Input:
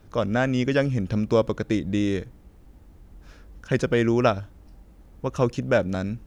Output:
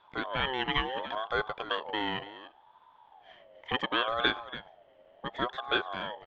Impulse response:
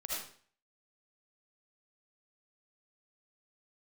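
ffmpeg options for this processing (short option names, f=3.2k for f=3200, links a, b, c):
-af "lowpass=f=2.5k:t=q:w=13,aecho=1:1:285:0.188,aeval=exprs='val(0)*sin(2*PI*770*n/s+770*0.25/0.7*sin(2*PI*0.7*n/s))':c=same,volume=-8.5dB"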